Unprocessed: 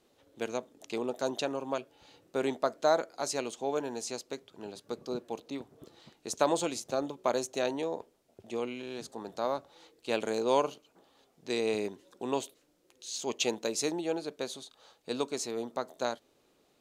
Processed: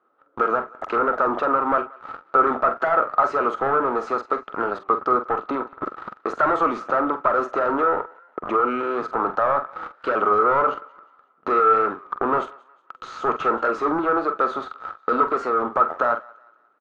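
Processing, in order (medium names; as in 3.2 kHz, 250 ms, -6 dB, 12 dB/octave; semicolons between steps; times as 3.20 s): high-pass 280 Hz 12 dB/octave; in parallel at +2 dB: peak limiter -21.5 dBFS, peak gain reduction 10 dB; on the sum: waveshaping leveller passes 5; compression 6:1, threshold -24 dBFS, peak gain reduction 12 dB; saturation -16.5 dBFS, distortion -26 dB; resonant low-pass 1.3 kHz, resonance Q 16; doubling 45 ms -10 dB; on a send: thinning echo 181 ms, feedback 46%, high-pass 740 Hz, level -22 dB; on the sum: warped record 33 1/3 rpm, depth 100 cents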